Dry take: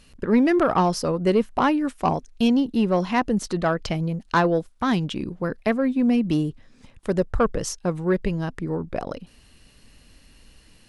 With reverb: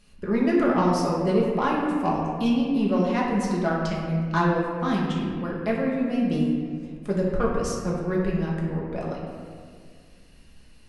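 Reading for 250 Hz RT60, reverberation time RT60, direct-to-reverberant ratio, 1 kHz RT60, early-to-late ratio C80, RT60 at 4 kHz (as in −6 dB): 2.4 s, 2.0 s, −4.5 dB, 1.9 s, 2.5 dB, 1.2 s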